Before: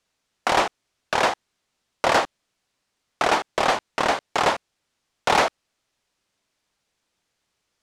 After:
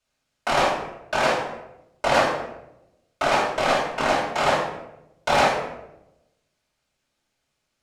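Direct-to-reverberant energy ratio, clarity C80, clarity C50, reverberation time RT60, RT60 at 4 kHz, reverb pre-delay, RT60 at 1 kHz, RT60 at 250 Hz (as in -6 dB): -7.5 dB, 6.5 dB, 1.5 dB, 0.90 s, 0.55 s, 3 ms, 0.80 s, 1.1 s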